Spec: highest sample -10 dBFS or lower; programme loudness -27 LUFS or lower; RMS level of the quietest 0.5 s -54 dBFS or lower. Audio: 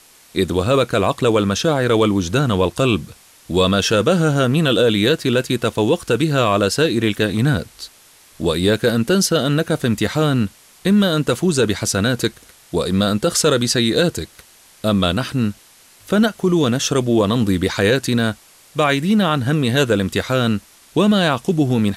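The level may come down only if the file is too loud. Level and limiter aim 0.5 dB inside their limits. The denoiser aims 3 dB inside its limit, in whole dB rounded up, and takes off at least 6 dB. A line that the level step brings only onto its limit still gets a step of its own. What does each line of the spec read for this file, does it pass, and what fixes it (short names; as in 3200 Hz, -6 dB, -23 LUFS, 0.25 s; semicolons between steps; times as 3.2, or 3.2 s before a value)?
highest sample -3.5 dBFS: fail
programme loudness -17.5 LUFS: fail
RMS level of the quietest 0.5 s -49 dBFS: fail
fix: gain -10 dB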